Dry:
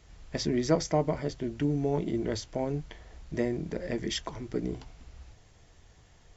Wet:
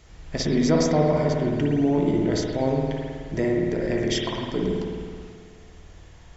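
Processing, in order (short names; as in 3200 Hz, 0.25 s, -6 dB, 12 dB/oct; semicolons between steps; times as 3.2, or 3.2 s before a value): in parallel at -1 dB: limiter -23.5 dBFS, peak gain reduction 11.5 dB; on the sum: spring tank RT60 1.9 s, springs 53 ms, chirp 75 ms, DRR -1.5 dB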